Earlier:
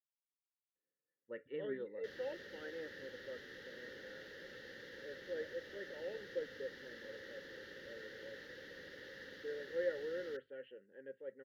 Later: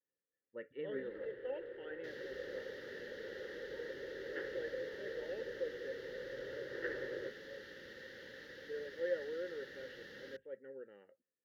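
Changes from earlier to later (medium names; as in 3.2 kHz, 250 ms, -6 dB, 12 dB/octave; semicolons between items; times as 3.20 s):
speech: entry -0.75 s; first sound: unmuted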